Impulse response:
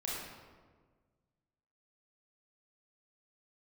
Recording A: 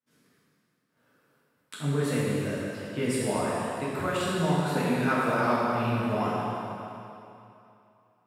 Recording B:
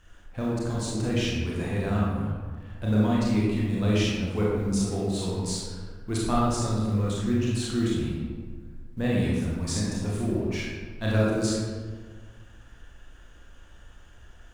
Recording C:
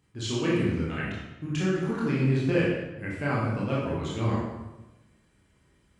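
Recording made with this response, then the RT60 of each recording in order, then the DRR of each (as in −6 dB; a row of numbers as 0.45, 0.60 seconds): B; 2.8, 1.5, 1.1 seconds; −9.0, −6.0, −6.5 decibels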